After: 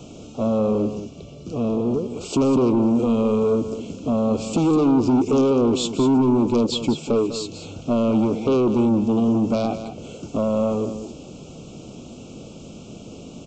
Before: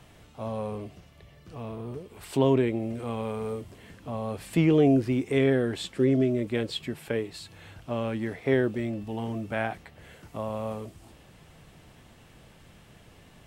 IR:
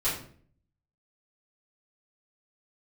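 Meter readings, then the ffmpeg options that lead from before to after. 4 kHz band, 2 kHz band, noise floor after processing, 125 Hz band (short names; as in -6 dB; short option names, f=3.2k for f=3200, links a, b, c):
+7.5 dB, -5.5 dB, -41 dBFS, +3.5 dB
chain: -filter_complex "[0:a]asplit=2[a][b];[b]aeval=exprs='0.299*sin(PI/2*3.55*val(0)/0.299)':c=same,volume=-3.5dB[c];[a][c]amix=inputs=2:normalize=0,lowshelf=f=120:g=-9,acompressor=threshold=-16dB:ratio=6,crystalizer=i=1.5:c=0,equalizer=f=250:t=o:w=1:g=9,equalizer=f=500:t=o:w=1:g=4,equalizer=f=1k:t=o:w=1:g=-9,equalizer=f=2k:t=o:w=1:g=-5,equalizer=f=4k:t=o:w=1:g=-6,aresample=16000,asoftclip=type=tanh:threshold=-14dB,aresample=44100,asuperstop=centerf=1800:order=8:qfactor=2,aecho=1:1:199:0.282"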